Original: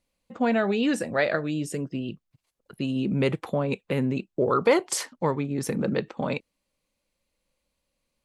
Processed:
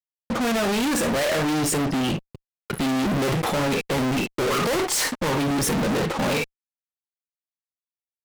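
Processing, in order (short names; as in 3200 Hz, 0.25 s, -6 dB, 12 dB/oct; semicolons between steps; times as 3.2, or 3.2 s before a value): non-linear reverb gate 80 ms flat, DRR 10 dB; fuzz box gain 49 dB, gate -55 dBFS; gain -8.5 dB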